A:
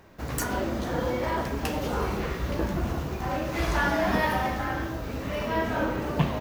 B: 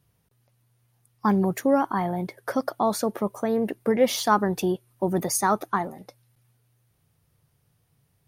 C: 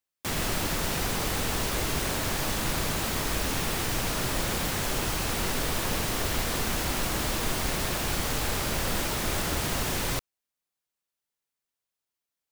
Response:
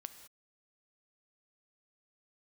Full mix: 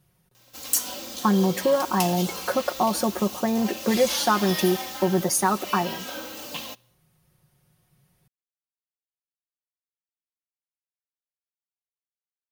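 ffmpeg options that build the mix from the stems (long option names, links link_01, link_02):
-filter_complex "[0:a]highpass=frequency=540:poles=1,aecho=1:1:3.8:0.67,aexciter=amount=6.5:drive=4.7:freq=2700,adelay=350,volume=-10dB,asplit=2[link_01][link_02];[link_02]volume=-12dB[link_03];[1:a]aecho=1:1:5.5:0.66,acompressor=threshold=-21dB:ratio=2.5,volume=-0.5dB,asplit=2[link_04][link_05];[link_05]volume=-4.5dB[link_06];[3:a]atrim=start_sample=2205[link_07];[link_03][link_06]amix=inputs=2:normalize=0[link_08];[link_08][link_07]afir=irnorm=-1:irlink=0[link_09];[link_01][link_04][link_09]amix=inputs=3:normalize=0"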